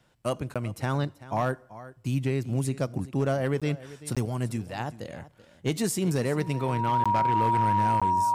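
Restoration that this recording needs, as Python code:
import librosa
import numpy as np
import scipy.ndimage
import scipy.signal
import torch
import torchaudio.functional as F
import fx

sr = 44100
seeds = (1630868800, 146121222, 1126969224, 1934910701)

y = fx.fix_declip(x, sr, threshold_db=-18.0)
y = fx.notch(y, sr, hz=950.0, q=30.0)
y = fx.fix_interpolate(y, sr, at_s=(0.54, 3.6, 4.15, 7.04, 8.0), length_ms=16.0)
y = fx.fix_echo_inverse(y, sr, delay_ms=384, level_db=-17.0)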